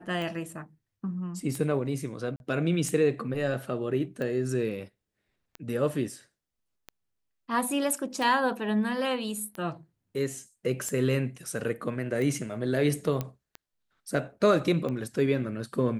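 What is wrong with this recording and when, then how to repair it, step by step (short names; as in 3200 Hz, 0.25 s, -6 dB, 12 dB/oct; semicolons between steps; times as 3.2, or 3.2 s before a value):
tick 45 rpm
2.36–2.4 gap 41 ms
13.21 pop -17 dBFS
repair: de-click; interpolate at 2.36, 41 ms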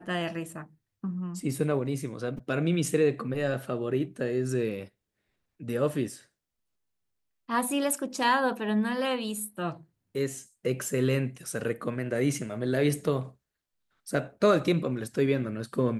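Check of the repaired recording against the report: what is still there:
13.21 pop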